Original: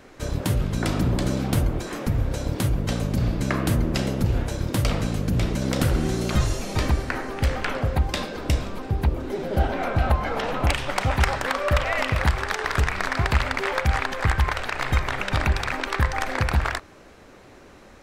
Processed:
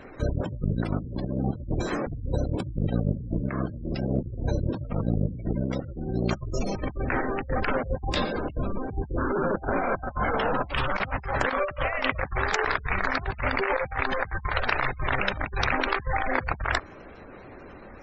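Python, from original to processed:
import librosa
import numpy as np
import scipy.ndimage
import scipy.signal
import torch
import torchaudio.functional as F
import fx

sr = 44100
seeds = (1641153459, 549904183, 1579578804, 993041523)

y = fx.dmg_noise_band(x, sr, seeds[0], low_hz=890.0, high_hz=1600.0, level_db=-36.0, at=(9.17, 11.12), fade=0.02)
y = fx.spec_gate(y, sr, threshold_db=-20, keep='strong')
y = fx.over_compress(y, sr, threshold_db=-27.0, ratio=-0.5)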